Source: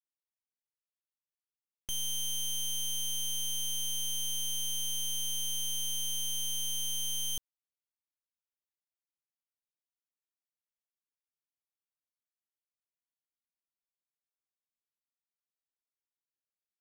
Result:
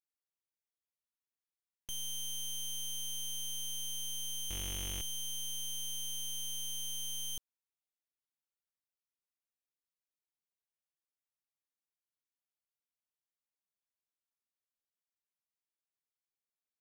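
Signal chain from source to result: 4.48–5.02 cycle switcher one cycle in 3, inverted; gain -5.5 dB

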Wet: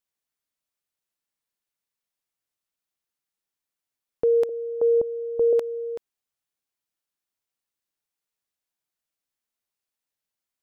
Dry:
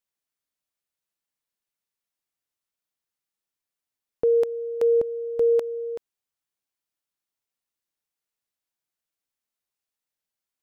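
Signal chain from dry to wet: 4.49–5.53 LPF 1000 Hz 24 dB/oct

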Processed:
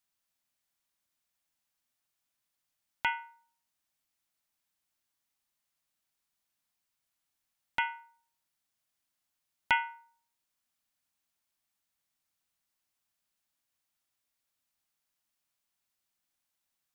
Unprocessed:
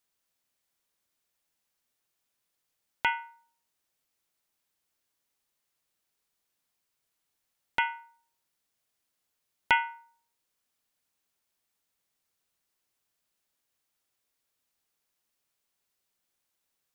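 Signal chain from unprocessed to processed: bell 440 Hz -11 dB 0.42 oct; gain -3 dB

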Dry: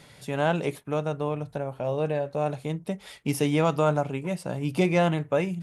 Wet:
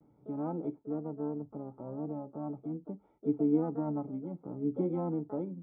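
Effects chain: vocal tract filter u; harmoniser +7 st -10 dB; vibrato 0.4 Hz 29 cents

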